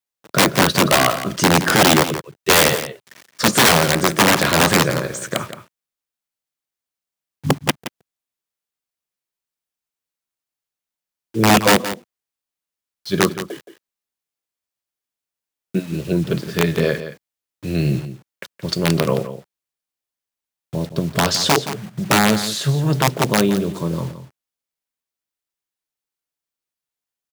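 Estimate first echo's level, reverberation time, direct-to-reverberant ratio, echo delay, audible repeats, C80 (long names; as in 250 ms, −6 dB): −12.0 dB, no reverb audible, no reverb audible, 171 ms, 1, no reverb audible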